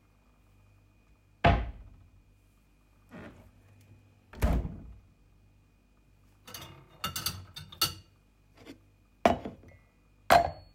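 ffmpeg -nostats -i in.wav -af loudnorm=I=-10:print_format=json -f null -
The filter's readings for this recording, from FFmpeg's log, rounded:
"input_i" : "-29.1",
"input_tp" : "-7.1",
"input_lra" : "8.4",
"input_thresh" : "-43.9",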